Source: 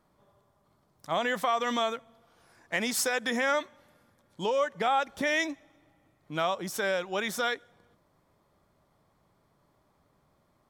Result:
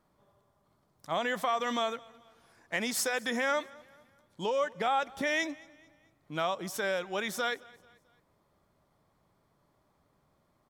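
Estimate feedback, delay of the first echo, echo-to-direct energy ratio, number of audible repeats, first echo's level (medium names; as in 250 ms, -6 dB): 43%, 219 ms, -22.5 dB, 2, -23.5 dB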